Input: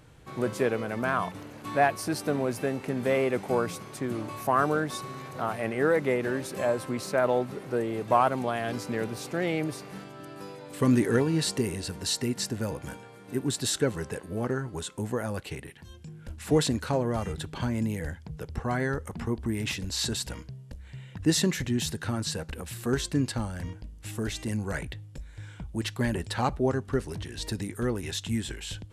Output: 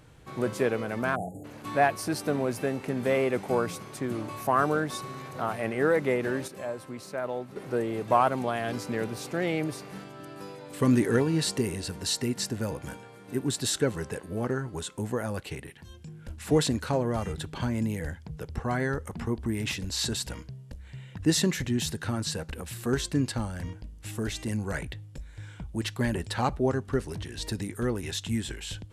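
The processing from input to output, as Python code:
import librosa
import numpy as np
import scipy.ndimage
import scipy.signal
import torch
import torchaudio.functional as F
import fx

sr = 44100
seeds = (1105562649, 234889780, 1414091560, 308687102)

y = fx.spec_erase(x, sr, start_s=1.15, length_s=0.3, low_hz=860.0, high_hz=6600.0)
y = fx.edit(y, sr, fx.clip_gain(start_s=6.48, length_s=1.08, db=-8.0), tone=tone)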